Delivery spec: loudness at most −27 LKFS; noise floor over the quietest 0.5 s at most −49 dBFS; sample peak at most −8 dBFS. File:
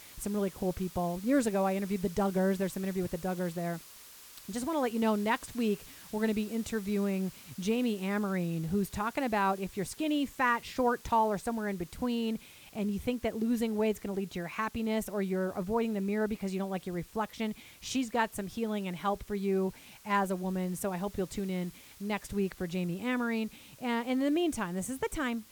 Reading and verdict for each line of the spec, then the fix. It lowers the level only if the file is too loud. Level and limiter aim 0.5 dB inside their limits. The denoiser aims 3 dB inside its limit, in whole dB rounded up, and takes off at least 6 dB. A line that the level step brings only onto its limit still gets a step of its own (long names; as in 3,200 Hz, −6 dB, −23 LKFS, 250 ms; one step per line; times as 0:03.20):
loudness −32.5 LKFS: in spec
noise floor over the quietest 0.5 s −52 dBFS: in spec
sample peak −16.0 dBFS: in spec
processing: no processing needed